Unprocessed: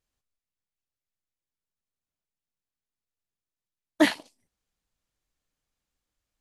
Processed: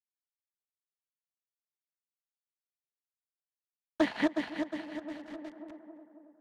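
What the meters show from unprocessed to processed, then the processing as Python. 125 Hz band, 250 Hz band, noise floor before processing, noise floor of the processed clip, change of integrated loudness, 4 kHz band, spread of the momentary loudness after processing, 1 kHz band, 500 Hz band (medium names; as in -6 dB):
-0.5 dB, -2.5 dB, under -85 dBFS, under -85 dBFS, -9.5 dB, -8.5 dB, 21 LU, -3.0 dB, -2.5 dB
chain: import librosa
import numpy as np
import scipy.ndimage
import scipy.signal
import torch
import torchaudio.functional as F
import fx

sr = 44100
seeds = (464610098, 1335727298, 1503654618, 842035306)

p1 = fx.reverse_delay_fb(x, sr, ms=180, feedback_pct=47, wet_db=-1)
p2 = fx.highpass(p1, sr, hz=50.0, slope=6)
p3 = fx.rider(p2, sr, range_db=3, speed_s=0.5)
p4 = p2 + F.gain(torch.from_numpy(p3), -2.0).numpy()
p5 = fx.quant_companded(p4, sr, bits=4)
p6 = fx.spacing_loss(p5, sr, db_at_10k=23)
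p7 = fx.echo_tape(p6, sr, ms=274, feedback_pct=60, wet_db=-19, lp_hz=1700.0, drive_db=3.0, wow_cents=37)
p8 = fx.band_squash(p7, sr, depth_pct=70)
y = F.gain(torch.from_numpy(p8), -8.0).numpy()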